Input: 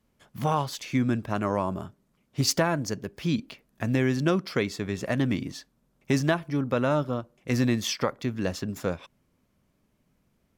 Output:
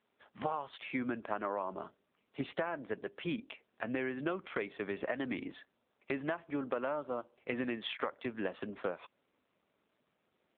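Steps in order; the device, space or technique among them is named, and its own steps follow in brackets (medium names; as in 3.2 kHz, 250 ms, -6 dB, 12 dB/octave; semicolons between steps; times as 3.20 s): voicemail (band-pass 400–3100 Hz; compression 8:1, threshold -32 dBFS, peak gain reduction 12.5 dB; trim +1 dB; AMR-NB 7.4 kbps 8 kHz)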